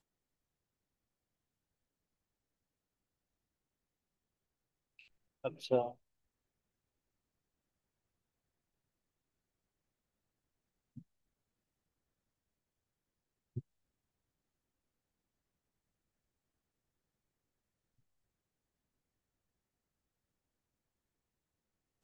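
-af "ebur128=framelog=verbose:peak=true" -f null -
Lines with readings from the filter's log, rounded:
Integrated loudness:
  I:         -39.0 LUFS
  Threshold: -51.6 LUFS
Loudness range:
  LRA:        14.8 LU
  Threshold: -67.7 LUFS
  LRA low:   -57.9 LUFS
  LRA high:  -43.1 LUFS
True peak:
  Peak:      -17.0 dBFS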